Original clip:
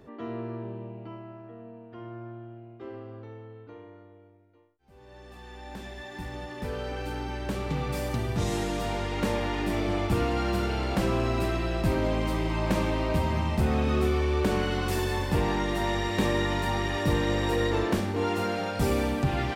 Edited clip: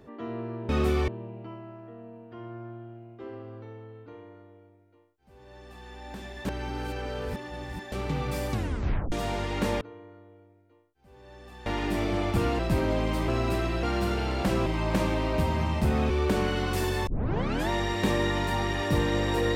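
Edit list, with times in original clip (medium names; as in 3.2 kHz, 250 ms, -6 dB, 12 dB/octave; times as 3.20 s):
3.65–5.50 s: copy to 9.42 s
6.06–7.53 s: reverse
8.13 s: tape stop 0.60 s
10.35–11.18 s: swap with 11.73–12.42 s
13.86–14.25 s: move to 0.69 s
15.22 s: tape start 0.62 s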